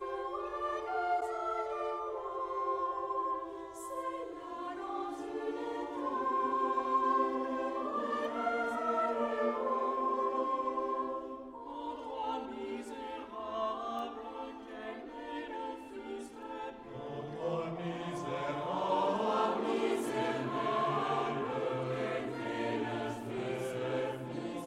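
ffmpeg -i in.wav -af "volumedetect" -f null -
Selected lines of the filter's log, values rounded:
mean_volume: -35.7 dB
max_volume: -19.5 dB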